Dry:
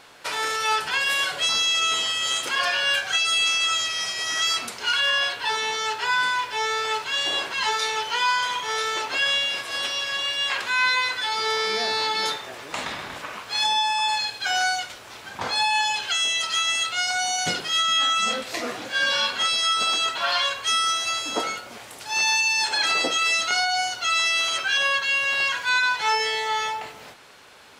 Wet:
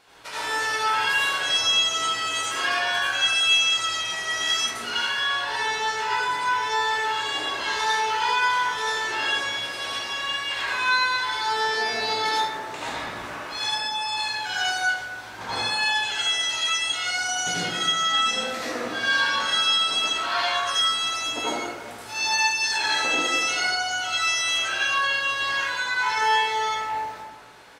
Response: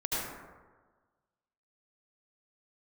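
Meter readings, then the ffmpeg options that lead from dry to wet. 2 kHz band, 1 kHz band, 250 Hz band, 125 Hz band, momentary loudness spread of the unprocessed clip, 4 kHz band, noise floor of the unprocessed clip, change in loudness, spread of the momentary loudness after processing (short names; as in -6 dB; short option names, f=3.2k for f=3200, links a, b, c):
0.0 dB, +0.5 dB, +2.0 dB, +2.5 dB, 8 LU, -1.0 dB, -42 dBFS, -1.0 dB, 8 LU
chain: -filter_complex "[0:a]asplit=2[a][b];[b]adelay=17,volume=-7dB[c];[a][c]amix=inputs=2:normalize=0[d];[1:a]atrim=start_sample=2205[e];[d][e]afir=irnorm=-1:irlink=0,volume=-7.5dB"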